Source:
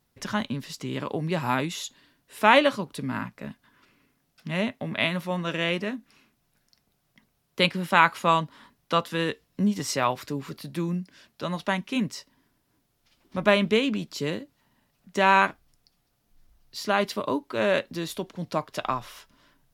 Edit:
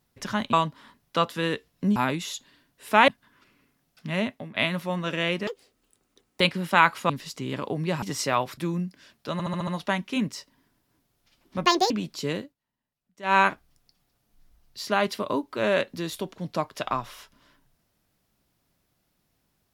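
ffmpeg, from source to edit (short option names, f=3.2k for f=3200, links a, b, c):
-filter_complex "[0:a]asplit=19[a][b][c][d][e][f][g][h][i][j][k][l][m][n][o][p][q][r][s];[a]atrim=end=0.532[t];[b]atrim=start=8.288:end=9.722[u];[c]atrim=start=1.458:end=2.582[v];[d]atrim=start=3.488:end=4.96,asetpts=PTS-STARTPTS,afade=t=out:st=1.212:d=0.26:silence=0.149624[w];[e]atrim=start=4.96:end=5.884,asetpts=PTS-STARTPTS,afade=t=in:d=0.004:c=hsin:silence=0.149624[x];[f]atrim=start=5.88:end=7.6,asetpts=PTS-STARTPTS,asetrate=81144,aresample=44100[y];[g]atrim=start=7.596:end=8.292[z];[h]atrim=start=0.528:end=1.462[aa];[i]atrim=start=9.718:end=10.272[ab];[j]atrim=start=10.718:end=11.542[ac];[k]atrim=start=11.468:end=11.542[ad];[l]atrim=start=11.468:end=11.542[ae];[m]atrim=start=11.468:end=11.542[af];[n]atrim=start=11.468:end=11.542[ag];[o]atrim=start=11.468:end=13.454[ah];[p]atrim=start=13.45:end=13.88,asetpts=PTS-STARTPTS,asetrate=75852,aresample=44100[ai];[q]atrim=start=13.876:end=14.52,asetpts=PTS-STARTPTS,afade=t=out:st=0.504:d=0.14:silence=0.105925[aj];[r]atrim=start=14.52:end=15.2,asetpts=PTS-STARTPTS,volume=-19.5dB[ak];[s]atrim=start=15.2,asetpts=PTS-STARTPTS,afade=t=in:d=0.14:silence=0.105925[al];[t][u]acrossfade=d=0.004:c1=hsin:c2=hsin[am];[am][v]acrossfade=d=0.004:c1=hsin:c2=hsin[an];[w][x]concat=n=2:v=0:a=1[ao];[an][ao]acrossfade=d=0.004:c1=hsin:c2=hsin[ap];[ap][y]acrossfade=d=0.004:c1=hsin:c2=hsin[aq];[aq][z]acrossfade=d=0.004:c1=hsin:c2=hsin[ar];[ar][aa]acrossfade=d=0.004:c1=hsin:c2=hsin[as];[as][ab]acrossfade=d=0.004:c1=hsin:c2=hsin[at];[at][ac]acrossfade=d=0.004:c1=hsin:c2=hsin[au];[au][ad]acrossfade=d=0.004:c1=hsin:c2=hsin[av];[av][ae]acrossfade=d=0.004:c1=hsin:c2=hsin[aw];[aw][af]acrossfade=d=0.004:c1=hsin:c2=hsin[ax];[ax][ag]acrossfade=d=0.004:c1=hsin:c2=hsin[ay];[ay][ah]acrossfade=d=0.004:c1=hsin:c2=hsin[az];[az][ai]acrossfade=d=0.004:c1=hsin:c2=hsin[ba];[aj][ak][al]concat=n=3:v=0:a=1[bb];[ba][bb]acrossfade=d=0.004:c1=hsin:c2=hsin"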